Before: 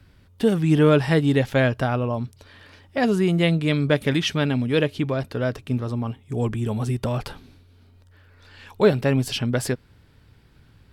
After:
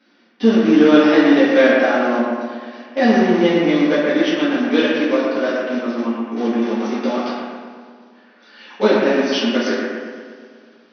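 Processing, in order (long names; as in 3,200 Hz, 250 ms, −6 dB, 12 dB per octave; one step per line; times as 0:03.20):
0:03.19–0:04.63: high-shelf EQ 2,700 Hz −11 dB
in parallel at −6 dB: comparator with hysteresis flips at −20 dBFS
on the sum: linear-phase brick-wall band-pass 190–6,200 Hz
on a send: bucket-brigade delay 119 ms, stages 2,048, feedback 59%, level −3 dB
on the sum: coupled-rooms reverb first 0.56 s, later 2.6 s, from −20 dB, DRR −8 dB
level −4 dB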